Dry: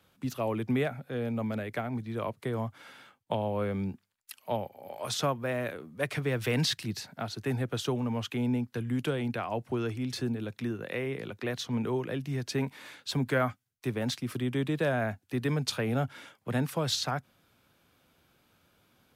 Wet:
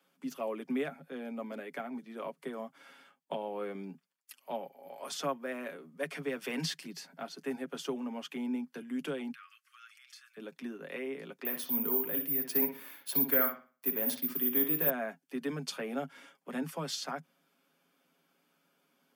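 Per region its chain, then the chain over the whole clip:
9.32–10.37 brick-wall FIR high-pass 1100 Hz + compressor 2:1, threshold -49 dBFS
11.45–14.9 high shelf 6700 Hz -6.5 dB + careless resampling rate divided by 3×, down none, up zero stuff + analogue delay 61 ms, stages 2048, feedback 32%, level -7.5 dB
whole clip: steep high-pass 160 Hz 96 dB/oct; notch 3900 Hz, Q 8.2; comb 7.3 ms, depth 52%; gain -6.5 dB

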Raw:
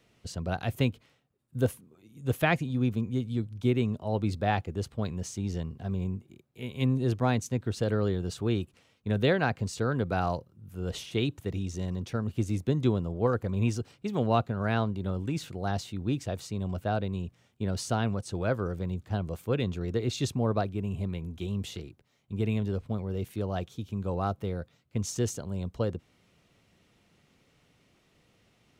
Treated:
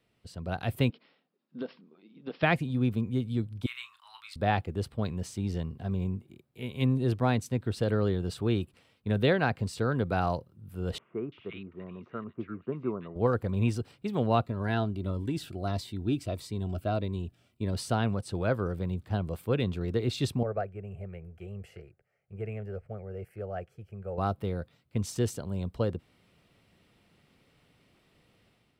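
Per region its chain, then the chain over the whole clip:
0.9–2.43 brick-wall FIR band-pass 160–5700 Hz + compressor 10:1, threshold -31 dBFS
3.66–4.36 elliptic high-pass 1100 Hz, stop band 50 dB + doubler 33 ms -8 dB
10.98–13.16 speaker cabinet 290–2100 Hz, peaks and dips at 290 Hz -6 dB, 520 Hz -7 dB, 800 Hz -9 dB, 1200 Hz +7 dB, 1800 Hz -5 dB + bands offset in time lows, highs 0.34 s, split 1600 Hz
14.46–17.73 comb 3 ms, depth 32% + cascading phaser falling 1.6 Hz
20.43–24.18 LPF 1900 Hz 6 dB/oct + low shelf 210 Hz -8 dB + fixed phaser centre 1000 Hz, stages 6
whole clip: bell 6600 Hz -11 dB 0.23 oct; notch 5600 Hz, Q 22; AGC gain up to 8.5 dB; gain -8 dB

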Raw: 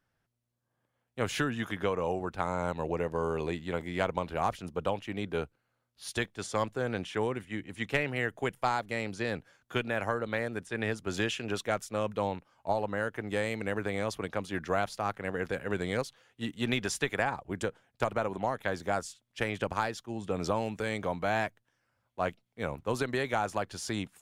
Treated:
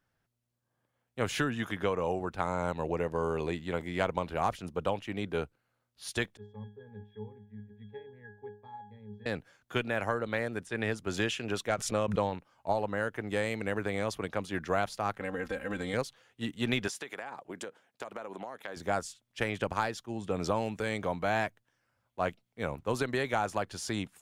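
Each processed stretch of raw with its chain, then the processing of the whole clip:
6.37–9.26 high shelf 5900 Hz -9 dB + octave resonator G#, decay 0.38 s
11.69–12.33 LPF 10000 Hz + transient shaper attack +3 dB, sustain -11 dB + backwards sustainer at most 70 dB/s
15.2–15.94 comb 3.8 ms, depth 88% + compressor 2.5:1, threshold -32 dBFS
16.88–18.77 HPF 250 Hz + compressor 8:1, threshold -36 dBFS
whole clip: dry

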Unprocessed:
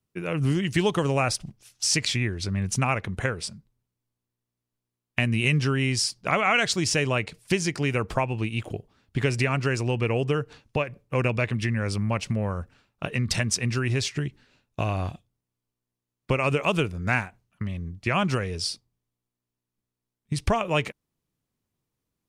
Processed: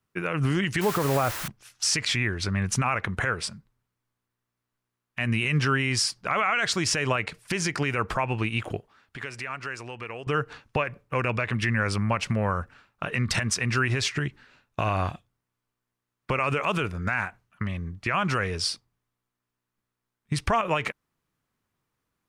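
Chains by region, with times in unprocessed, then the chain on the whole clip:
0.81–1.48 LPF 1000 Hz + requantised 6-bit, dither triangular
8.79–10.27 low shelf 310 Hz -9.5 dB + compressor 2.5:1, threshold -42 dBFS
whole clip: bell 1400 Hz +10.5 dB 1.7 oct; limiter -14 dBFS

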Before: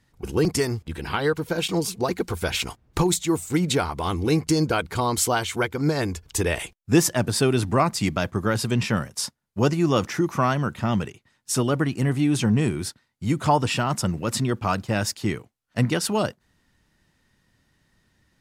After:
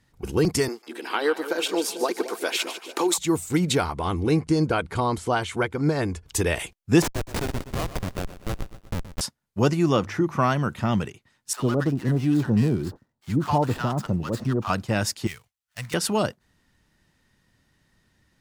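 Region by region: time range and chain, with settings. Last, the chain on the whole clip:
0.68–3.18 steep high-pass 270 Hz + split-band echo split 750 Hz, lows 0.221 s, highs 0.148 s, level -11 dB
3.92–6.26 de-esser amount 55% + steep low-pass 11000 Hz 48 dB/oct + bell 5800 Hz -6 dB 2 oct
7.02–9.21 low shelf 220 Hz -10 dB + Schmitt trigger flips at -19 dBFS + lo-fi delay 0.123 s, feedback 55%, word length 8-bit, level -13 dB
9.96–10.39 high shelf 4200 Hz -11.5 dB + de-hum 50.34 Hz, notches 3
11.53–14.7 median filter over 15 samples + bell 2200 Hz -6.5 dB 0.24 oct + bands offset in time highs, lows 60 ms, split 890 Hz
15.27–15.94 switching dead time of 0.08 ms + passive tone stack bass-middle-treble 10-0-10
whole clip: dry

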